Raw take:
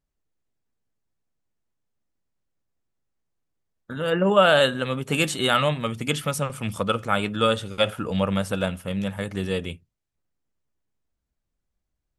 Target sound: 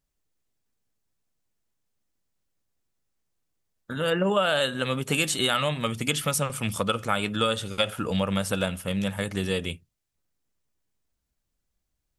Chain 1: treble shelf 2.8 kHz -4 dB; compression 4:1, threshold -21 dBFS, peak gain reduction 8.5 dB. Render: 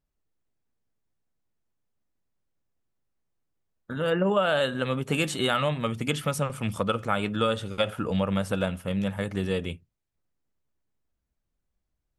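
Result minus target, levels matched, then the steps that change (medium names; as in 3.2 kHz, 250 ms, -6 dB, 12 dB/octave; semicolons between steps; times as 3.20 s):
4 kHz band -4.0 dB
change: treble shelf 2.8 kHz +7 dB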